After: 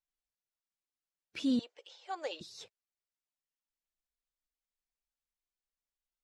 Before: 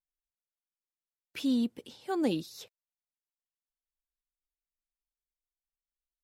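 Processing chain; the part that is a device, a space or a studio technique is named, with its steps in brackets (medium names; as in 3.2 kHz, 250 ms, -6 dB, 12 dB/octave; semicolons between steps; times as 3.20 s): 1.59–2.41 s: elliptic band-pass 550–7000 Hz, stop band 40 dB; clip after many re-uploads (low-pass 8.6 kHz 24 dB/octave; coarse spectral quantiser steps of 15 dB); trim -1.5 dB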